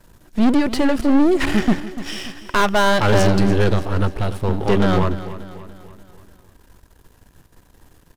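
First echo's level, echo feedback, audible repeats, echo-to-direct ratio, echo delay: -14.5 dB, 50%, 4, -13.5 dB, 291 ms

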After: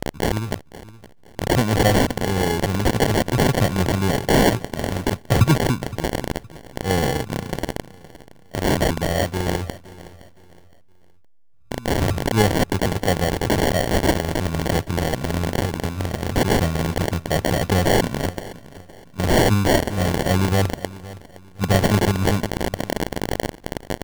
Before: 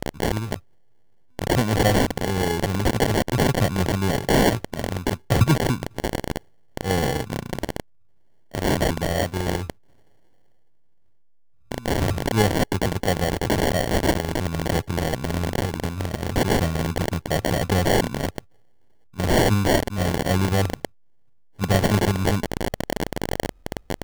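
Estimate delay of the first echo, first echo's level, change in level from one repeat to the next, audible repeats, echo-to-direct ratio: 516 ms, -18.0 dB, -10.0 dB, 2, -17.5 dB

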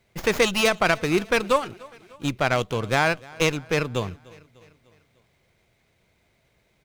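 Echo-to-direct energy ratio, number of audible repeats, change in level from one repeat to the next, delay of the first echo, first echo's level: -21.5 dB, 3, -5.5 dB, 299 ms, -23.0 dB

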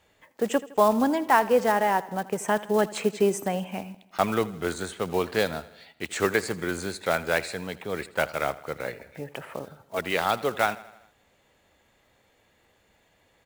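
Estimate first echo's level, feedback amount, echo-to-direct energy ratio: -18.5 dB, 57%, -17.0 dB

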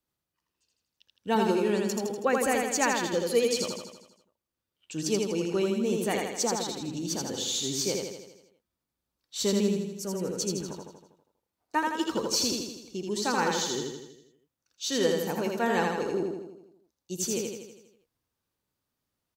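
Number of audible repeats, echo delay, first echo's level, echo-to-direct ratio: 7, 81 ms, -3.0 dB, -1.5 dB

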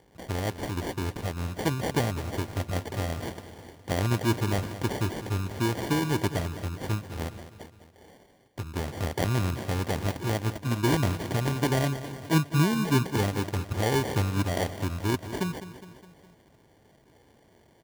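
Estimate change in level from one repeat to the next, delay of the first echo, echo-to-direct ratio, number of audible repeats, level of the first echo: -5.0 dB, 206 ms, -11.5 dB, 4, -13.0 dB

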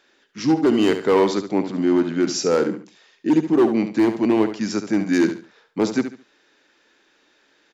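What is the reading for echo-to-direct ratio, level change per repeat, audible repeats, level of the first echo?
-9.5 dB, -11.5 dB, 3, -10.0 dB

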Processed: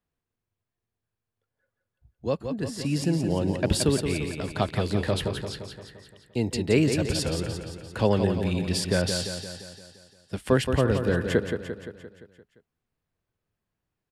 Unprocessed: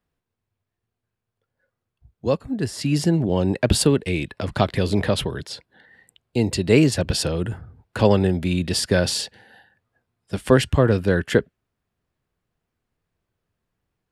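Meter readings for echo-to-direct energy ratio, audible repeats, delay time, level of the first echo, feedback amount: -5.5 dB, 6, 173 ms, -7.0 dB, 57%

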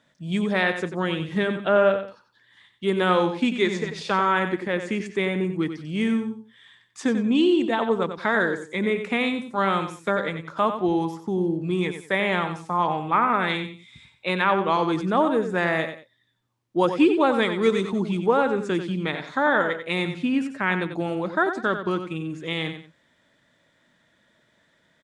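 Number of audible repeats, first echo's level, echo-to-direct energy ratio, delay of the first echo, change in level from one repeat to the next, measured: 2, -9.0 dB, -8.5 dB, 92 ms, -11.0 dB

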